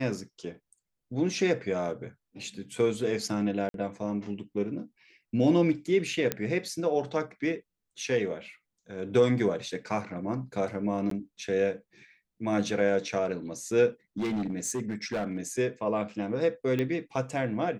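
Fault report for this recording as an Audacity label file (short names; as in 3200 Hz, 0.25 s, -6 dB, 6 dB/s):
3.690000	3.740000	gap 52 ms
6.320000	6.320000	pop -11 dBFS
11.100000	11.110000	gap 13 ms
14.180000	15.470000	clipped -26.5 dBFS
16.790000	16.790000	pop -18 dBFS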